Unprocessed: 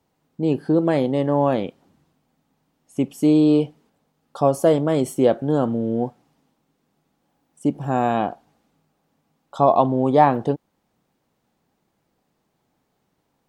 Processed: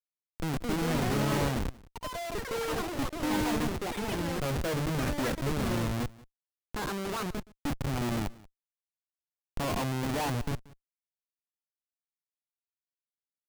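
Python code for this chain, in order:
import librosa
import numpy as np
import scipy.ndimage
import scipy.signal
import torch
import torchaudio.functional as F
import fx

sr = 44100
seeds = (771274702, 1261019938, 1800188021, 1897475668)

y = fx.highpass(x, sr, hz=76.0, slope=6)
y = fx.peak_eq(y, sr, hz=700.0, db=-10.0, octaves=0.54)
y = fx.hum_notches(y, sr, base_hz=50, count=10)
y = y + 0.37 * np.pad(y, (int(1.2 * sr / 1000.0), 0))[:len(y)]
y = fx.schmitt(y, sr, flips_db=-26.0)
y = y + 10.0 ** (-22.0 / 20.0) * np.pad(y, (int(182 * sr / 1000.0), 0))[:len(y)]
y = fx.echo_pitch(y, sr, ms=356, semitones=7, count=3, db_per_echo=-3.0)
y = y * librosa.db_to_amplitude(-3.5)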